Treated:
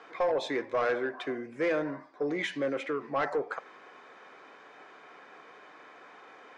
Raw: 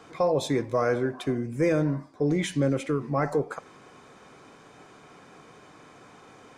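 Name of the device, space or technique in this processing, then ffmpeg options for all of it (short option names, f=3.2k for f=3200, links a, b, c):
intercom: -af "highpass=430,lowpass=3.6k,equalizer=f=1.8k:t=o:w=0.53:g=5,asoftclip=type=tanh:threshold=-21dB"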